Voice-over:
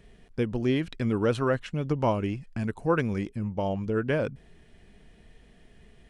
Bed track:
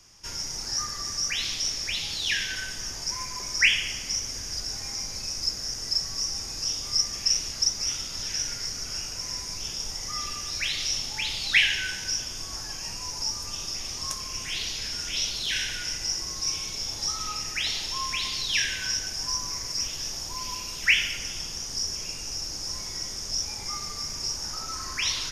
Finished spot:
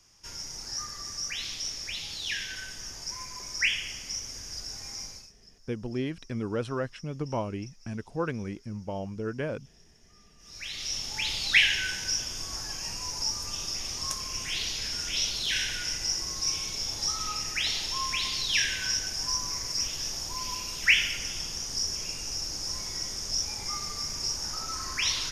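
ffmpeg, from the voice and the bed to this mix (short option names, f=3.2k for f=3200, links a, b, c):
-filter_complex "[0:a]adelay=5300,volume=-6dB[a];[1:a]volume=22.5dB,afade=t=out:st=5.04:d=0.28:silence=0.0707946,afade=t=in:st=10.38:d=0.9:silence=0.0375837[b];[a][b]amix=inputs=2:normalize=0"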